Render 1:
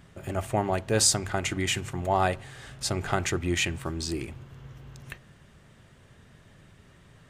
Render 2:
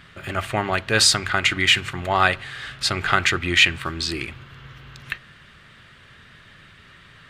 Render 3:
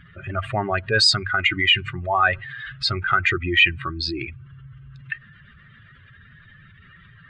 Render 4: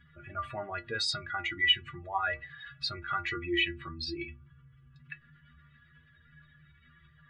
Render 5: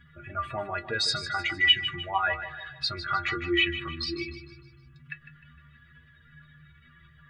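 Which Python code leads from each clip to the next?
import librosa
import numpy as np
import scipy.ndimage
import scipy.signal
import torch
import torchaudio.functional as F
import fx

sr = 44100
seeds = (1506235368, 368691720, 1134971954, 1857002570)

y1 = fx.band_shelf(x, sr, hz=2300.0, db=12.0, octaves=2.3)
y1 = F.gain(torch.from_numpy(y1), 1.5).numpy()
y2 = fx.spec_expand(y1, sr, power=2.2)
y3 = fx.stiff_resonator(y2, sr, f0_hz=71.0, decay_s=0.5, stiffness=0.03)
y4 = fx.echo_feedback(y3, sr, ms=153, feedback_pct=45, wet_db=-12.0)
y4 = F.gain(torch.from_numpy(y4), 4.5).numpy()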